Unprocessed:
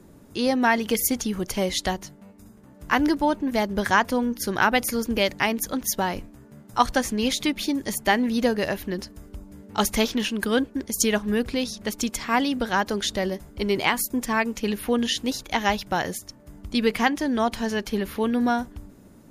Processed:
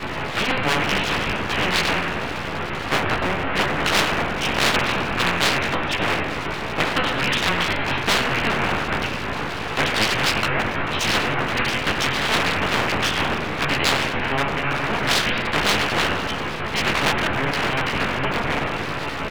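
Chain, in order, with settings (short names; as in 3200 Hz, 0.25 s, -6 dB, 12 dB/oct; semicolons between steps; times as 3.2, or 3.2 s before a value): trilling pitch shifter -8.5 st, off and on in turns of 0.19 s; low shelf 100 Hz +6 dB; de-hum 249.4 Hz, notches 3; in parallel at -1 dB: limiter -17 dBFS, peak gain reduction 11.5 dB; on the sum: added noise pink -33 dBFS; mistuned SSB -270 Hz 150–3000 Hz; chorus 0.31 Hz, delay 18.5 ms, depth 4.2 ms; doubler 14 ms -3 dB; thin delay 98 ms, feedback 52%, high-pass 1900 Hz, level -9 dB; reverb RT60 0.60 s, pre-delay 6 ms, DRR 5 dB; full-wave rectifier; spectral compressor 4:1; gain -2 dB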